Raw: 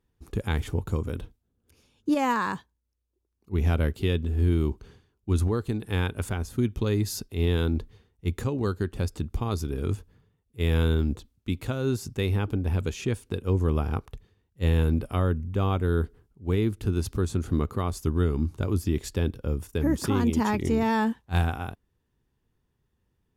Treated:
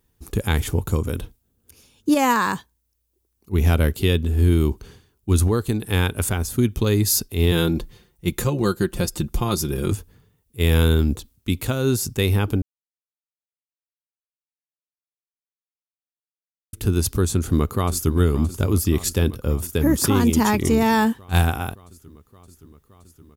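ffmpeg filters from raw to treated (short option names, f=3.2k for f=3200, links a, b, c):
-filter_complex "[0:a]asettb=1/sr,asplit=3[a][b][c];[a]atrim=end=7.514[d];[b]atrim=start=7.51:end=9.92,asetpts=PTS-STARTPTS,afade=t=in:d=0.004:c=qsin,afade=t=out:st=2.406:d=0.004:c=qsin,aecho=1:1:5.7:0.65,atrim=end_sample=106281[e];[c]atrim=start=9.916[f];[d][e]acrossfade=d=0.004:c1=hsin:c2=qsin[g];[g][f]acrossfade=d=0.004:c1=qsin:c2=hsin,asplit=2[h][i];[i]afade=t=in:st=17.3:d=0.01,afade=t=out:st=18.16:d=0.01,aecho=0:1:570|1140|1710|2280|2850|3420|3990|4560|5130|5700|6270|6840:0.188365|0.150692|0.120554|0.0964428|0.0771543|0.0617234|0.0493787|0.039503|0.0316024|0.0252819|0.0202255|0.0161804[j];[h][j]amix=inputs=2:normalize=0,asplit=3[k][l][m];[k]atrim=end=12.62,asetpts=PTS-STARTPTS,afade=t=out:st=12.616:d=0.004:c=hsin[n];[l]atrim=start=12.62:end=16.73,asetpts=PTS-STARTPTS,volume=0[o];[m]atrim=start=16.73,asetpts=PTS-STARTPTS,afade=t=in:d=0.004:c=hsin[p];[n][o][p]concat=n=3:v=0:a=1,aemphasis=mode=production:type=50kf,volume=6dB"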